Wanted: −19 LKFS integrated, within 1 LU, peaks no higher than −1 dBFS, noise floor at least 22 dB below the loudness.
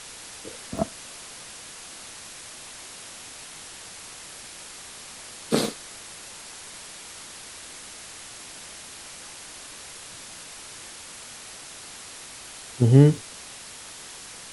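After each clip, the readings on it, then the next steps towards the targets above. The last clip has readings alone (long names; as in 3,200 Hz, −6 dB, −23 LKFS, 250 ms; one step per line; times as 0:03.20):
number of dropouts 3; longest dropout 1.1 ms; background noise floor −43 dBFS; target noise floor −53 dBFS; integrated loudness −30.5 LKFS; sample peak −3.0 dBFS; target loudness −19.0 LKFS
→ repair the gap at 0:00.78/0:05.65/0:13.16, 1.1 ms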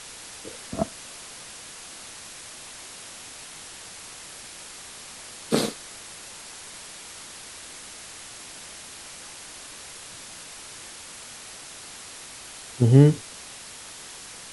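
number of dropouts 0; background noise floor −43 dBFS; target noise floor −53 dBFS
→ broadband denoise 10 dB, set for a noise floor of −43 dBFS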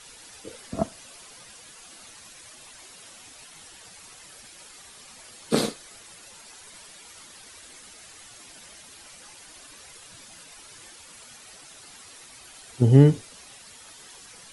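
background noise floor −48 dBFS; integrated loudness −22.0 LKFS; sample peak −3.0 dBFS; target loudness −19.0 LKFS
→ level +3 dB
brickwall limiter −1 dBFS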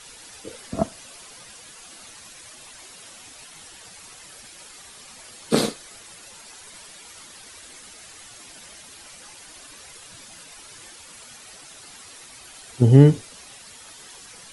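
integrated loudness −19.0 LKFS; sample peak −1.0 dBFS; background noise floor −45 dBFS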